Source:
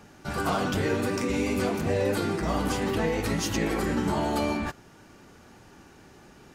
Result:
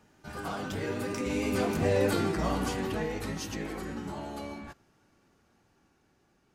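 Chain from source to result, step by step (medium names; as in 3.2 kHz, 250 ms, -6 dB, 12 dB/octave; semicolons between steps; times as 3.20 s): Doppler pass-by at 2.01 s, 10 m/s, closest 5.7 m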